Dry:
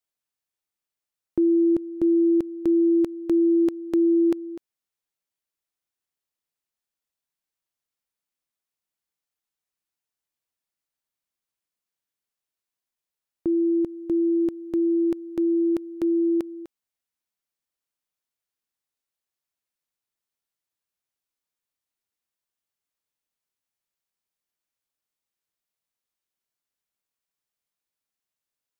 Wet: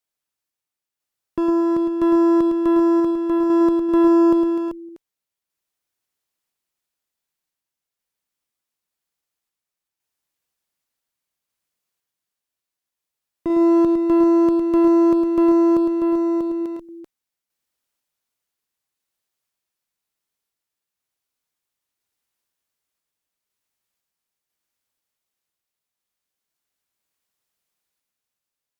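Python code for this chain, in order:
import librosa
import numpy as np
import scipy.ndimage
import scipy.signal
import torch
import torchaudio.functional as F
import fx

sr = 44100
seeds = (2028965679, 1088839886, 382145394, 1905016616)

p1 = fx.rider(x, sr, range_db=10, speed_s=0.5)
p2 = x + (p1 * 10.0 ** (-2.5 / 20.0))
p3 = fx.clip_asym(p2, sr, top_db=-21.0, bottom_db=-15.5)
p4 = fx.tremolo_random(p3, sr, seeds[0], hz=2.0, depth_pct=55)
p5 = fx.echo_multitap(p4, sr, ms=(107, 387), db=(-6.0, -7.5))
y = p5 * 10.0 ** (2.0 / 20.0)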